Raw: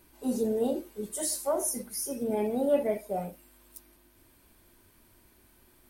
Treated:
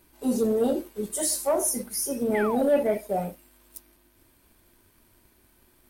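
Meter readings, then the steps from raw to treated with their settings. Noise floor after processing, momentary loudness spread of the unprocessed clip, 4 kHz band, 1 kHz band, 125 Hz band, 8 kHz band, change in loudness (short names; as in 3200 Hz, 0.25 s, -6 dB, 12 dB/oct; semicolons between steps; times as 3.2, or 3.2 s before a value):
-62 dBFS, 9 LU, +5.0 dB, +5.5 dB, +5.0 dB, +5.0 dB, +4.5 dB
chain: painted sound fall, 2.34–2.69, 430–2200 Hz -37 dBFS; sample leveller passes 1; gain +1.5 dB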